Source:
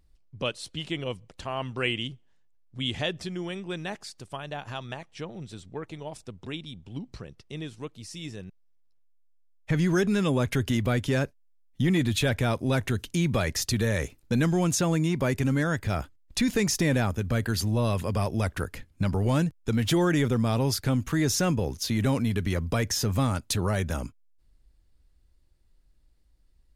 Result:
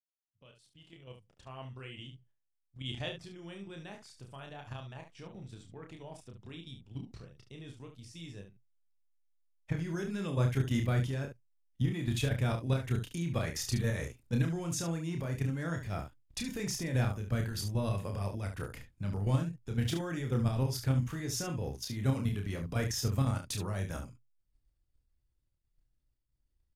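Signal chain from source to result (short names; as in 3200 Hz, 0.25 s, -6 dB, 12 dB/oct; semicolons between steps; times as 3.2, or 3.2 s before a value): opening faded in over 3.96 s; expander -56 dBFS; bell 120 Hz +9.5 dB 0.27 oct; notch 4100 Hz, Q 18; level quantiser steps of 10 dB; on a send: early reflections 30 ms -4.5 dB, 71 ms -9 dB; on the sum: gain -7 dB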